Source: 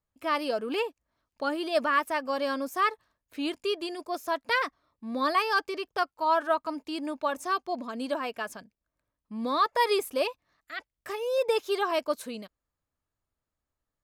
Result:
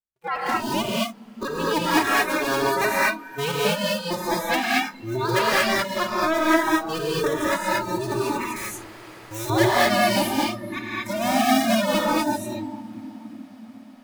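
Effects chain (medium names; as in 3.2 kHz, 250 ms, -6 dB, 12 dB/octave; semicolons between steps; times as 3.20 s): cycle switcher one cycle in 2, inverted; recorder AGC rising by 9.4 dB/s; echo that smears into a reverb 452 ms, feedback 79%, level -11.5 dB; spectral noise reduction 20 dB; gated-style reverb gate 260 ms rising, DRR -5.5 dB; 8.56–9.50 s: spectrum-flattening compressor 2:1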